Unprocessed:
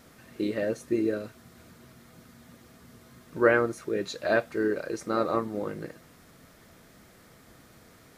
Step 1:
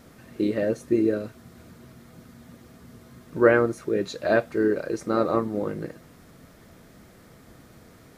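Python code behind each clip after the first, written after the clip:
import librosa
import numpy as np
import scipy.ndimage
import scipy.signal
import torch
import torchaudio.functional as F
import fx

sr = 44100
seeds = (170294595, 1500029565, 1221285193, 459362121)

y = fx.tilt_shelf(x, sr, db=3.0, hz=730.0)
y = y * 10.0 ** (3.0 / 20.0)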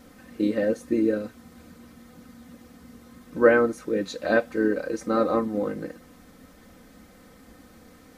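y = x + 0.67 * np.pad(x, (int(3.9 * sr / 1000.0), 0))[:len(x)]
y = y * 10.0 ** (-1.5 / 20.0)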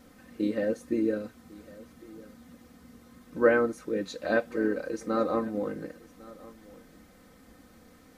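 y = x + 10.0 ** (-21.0 / 20.0) * np.pad(x, (int(1103 * sr / 1000.0), 0))[:len(x)]
y = y * 10.0 ** (-4.5 / 20.0)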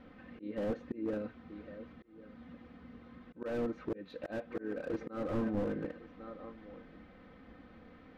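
y = scipy.signal.sosfilt(scipy.signal.butter(4, 3200.0, 'lowpass', fs=sr, output='sos'), x)
y = fx.auto_swell(y, sr, attack_ms=384.0)
y = fx.slew_limit(y, sr, full_power_hz=11.0)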